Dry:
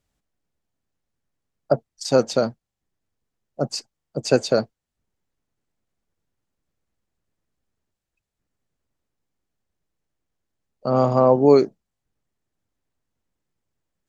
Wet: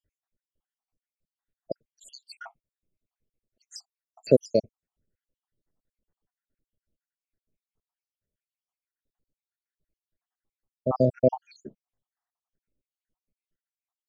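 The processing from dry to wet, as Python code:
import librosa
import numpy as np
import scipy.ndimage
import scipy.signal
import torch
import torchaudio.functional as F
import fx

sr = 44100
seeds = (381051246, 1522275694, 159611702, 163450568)

y = fx.spec_dropout(x, sr, seeds[0], share_pct=80)
y = fx.high_shelf(y, sr, hz=2900.0, db=-10.0)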